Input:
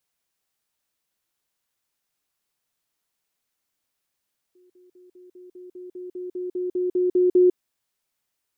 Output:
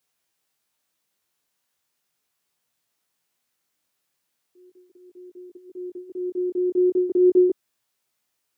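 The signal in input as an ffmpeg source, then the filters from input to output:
-f lavfi -i "aevalsrc='pow(10,(-54+3*floor(t/0.2))/20)*sin(2*PI*362*t)*clip(min(mod(t,0.2),0.15-mod(t,0.2))/0.005,0,1)':d=3:s=44100"
-filter_complex "[0:a]highpass=83,asplit=2[a][b];[b]alimiter=limit=-19.5dB:level=0:latency=1,volume=1dB[c];[a][c]amix=inputs=2:normalize=0,flanger=delay=17:depth=5.6:speed=0.38"

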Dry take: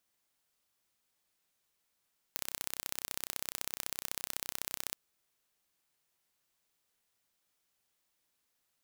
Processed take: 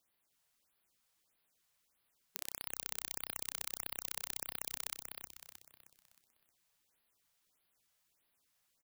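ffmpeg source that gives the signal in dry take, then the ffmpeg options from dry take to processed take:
-f lavfi -i "aevalsrc='0.422*eq(mod(n,1382),0)*(0.5+0.5*eq(mod(n,2764),0))':d=2.59:s=44100"
-filter_complex "[0:a]alimiter=limit=-11.5dB:level=0:latency=1:release=170,asplit=2[a][b];[b]asplit=5[c][d][e][f][g];[c]adelay=312,afreqshift=-55,volume=-4.5dB[h];[d]adelay=624,afreqshift=-110,volume=-12dB[i];[e]adelay=936,afreqshift=-165,volume=-19.6dB[j];[f]adelay=1248,afreqshift=-220,volume=-27.1dB[k];[g]adelay=1560,afreqshift=-275,volume=-34.6dB[l];[h][i][j][k][l]amix=inputs=5:normalize=0[m];[a][m]amix=inputs=2:normalize=0,afftfilt=real='re*(1-between(b*sr/1024,280*pow(7400/280,0.5+0.5*sin(2*PI*1.6*pts/sr))/1.41,280*pow(7400/280,0.5+0.5*sin(2*PI*1.6*pts/sr))*1.41))':imag='im*(1-between(b*sr/1024,280*pow(7400/280,0.5+0.5*sin(2*PI*1.6*pts/sr))/1.41,280*pow(7400/280,0.5+0.5*sin(2*PI*1.6*pts/sr))*1.41))':win_size=1024:overlap=0.75"

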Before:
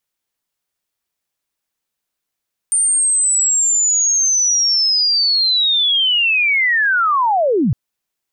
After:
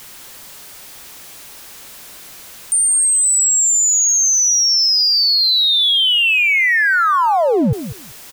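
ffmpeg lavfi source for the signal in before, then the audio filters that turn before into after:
-f lavfi -i "aevalsrc='0.251*sin(2*PI*(9000*t-8901*t*t/(2*5.01)))':d=5.01:s=44100"
-af "aeval=exprs='val(0)+0.5*0.0266*sgn(val(0))':c=same,aecho=1:1:194|388:0.251|0.0402"

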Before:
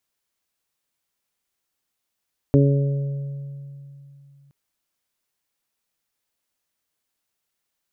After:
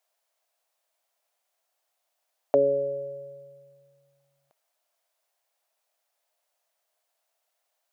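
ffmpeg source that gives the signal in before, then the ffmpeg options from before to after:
-f lavfi -i "aevalsrc='0.224*pow(10,-3*t/3.07)*sin(2*PI*140*t)+0.188*pow(10,-3*t/0.86)*sin(2*PI*280*t)+0.126*pow(10,-3*t/1.4)*sin(2*PI*420*t)+0.0668*pow(10,-3*t/1.87)*sin(2*PI*560*t)':d=1.97:s=44100"
-af "highpass=f=650:t=q:w=4.9"

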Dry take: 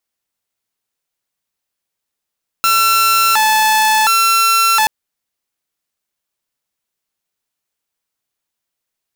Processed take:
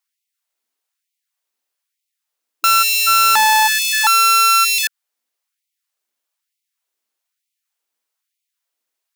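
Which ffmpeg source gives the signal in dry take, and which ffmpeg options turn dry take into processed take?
-f lavfi -i "aevalsrc='0.422*(2*mod((1109.5*t+240.5/0.7*(0.5-abs(mod(0.7*t,1)-0.5))),1)-1)':d=2.23:s=44100"
-af "afftfilt=real='re*gte(b*sr/1024,200*pow(2000/200,0.5+0.5*sin(2*PI*1.1*pts/sr)))':imag='im*gte(b*sr/1024,200*pow(2000/200,0.5+0.5*sin(2*PI*1.1*pts/sr)))':win_size=1024:overlap=0.75"

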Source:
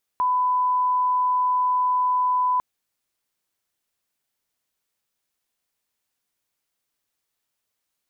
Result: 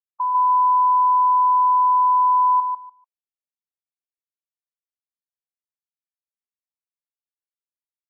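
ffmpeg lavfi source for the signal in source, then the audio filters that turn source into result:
-f lavfi -i "sine=f=1000:d=2.4:r=44100,volume=0.06dB"
-af "afftfilt=real='re*gte(hypot(re,im),0.126)':imag='im*gte(hypot(re,im),0.126)':win_size=1024:overlap=0.75,aecho=1:1:147|294|441:0.668|0.114|0.0193"

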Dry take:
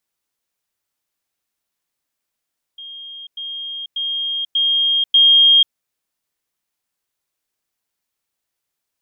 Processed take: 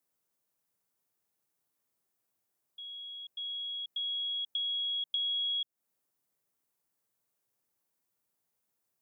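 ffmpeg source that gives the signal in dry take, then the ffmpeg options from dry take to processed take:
-f lavfi -i "aevalsrc='pow(10,(-31.5+6*floor(t/0.59))/20)*sin(2*PI*3230*t)*clip(min(mod(t,0.59),0.49-mod(t,0.59))/0.005,0,1)':d=2.95:s=44100"
-af "equalizer=f=3.1k:t=o:w=2.6:g=-9.5,acompressor=threshold=-33dB:ratio=5,afreqshift=91"

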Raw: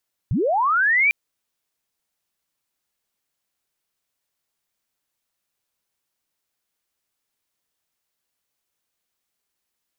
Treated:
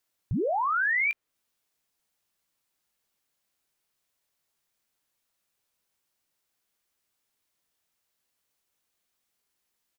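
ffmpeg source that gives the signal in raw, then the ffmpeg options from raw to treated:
-f lavfi -i "aevalsrc='pow(10,(-18+4*t/0.8)/20)*sin(2*PI*(82*t+2318*t*t/(2*0.8)))':d=0.8:s=44100"
-filter_complex "[0:a]acrossover=split=2900[a][b];[a]alimiter=limit=-24dB:level=0:latency=1:release=19[c];[b]acompressor=threshold=-41dB:ratio=6[d];[c][d]amix=inputs=2:normalize=0,asplit=2[e][f];[f]adelay=19,volume=-12dB[g];[e][g]amix=inputs=2:normalize=0"

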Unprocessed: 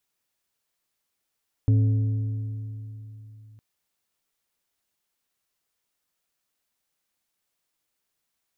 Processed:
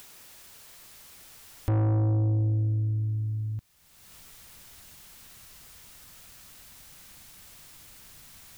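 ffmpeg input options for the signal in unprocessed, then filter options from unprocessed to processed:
-f lavfi -i "aevalsrc='0.178*pow(10,-3*t/3.53)*sin(2*PI*108*t)+0.0473*pow(10,-3*t/2.682)*sin(2*PI*270*t)+0.0126*pow(10,-3*t/2.329)*sin(2*PI*432*t)+0.00335*pow(10,-3*t/2.178)*sin(2*PI*540*t)+0.000891*pow(10,-3*t/2.013)*sin(2*PI*702*t)':d=1.91:s=44100"
-filter_complex "[0:a]asubboost=boost=4:cutoff=180,asplit=2[a][b];[b]acompressor=mode=upward:threshold=-23dB:ratio=2.5,volume=-2.5dB[c];[a][c]amix=inputs=2:normalize=0,asoftclip=type=tanh:threshold=-22.5dB"

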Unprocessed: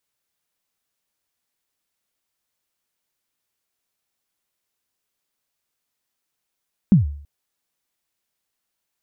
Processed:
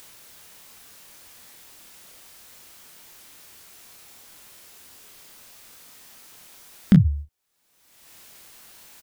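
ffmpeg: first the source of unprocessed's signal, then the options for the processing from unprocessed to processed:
-f lavfi -i "aevalsrc='0.501*pow(10,-3*t/0.55)*sin(2*PI*(220*0.136/log(72/220)*(exp(log(72/220)*min(t,0.136)/0.136)-1)+72*max(t-0.136,0)))':d=0.33:s=44100"
-filter_complex "[0:a]agate=range=-12dB:threshold=-34dB:ratio=16:detection=peak,acompressor=mode=upward:threshold=-18dB:ratio=2.5,asplit=2[a][b];[b]aecho=0:1:26|38:0.562|0.299[c];[a][c]amix=inputs=2:normalize=0"

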